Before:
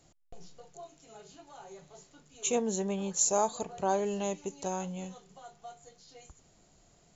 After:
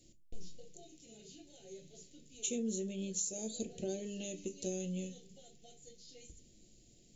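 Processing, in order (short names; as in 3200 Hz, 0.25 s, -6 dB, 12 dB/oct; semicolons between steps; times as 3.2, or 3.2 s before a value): Chebyshev band-stop 390–3000 Hz, order 2; compressor 10:1, threshold -35 dBFS, peak gain reduction 12 dB; reverb RT60 0.25 s, pre-delay 3 ms, DRR 6.5 dB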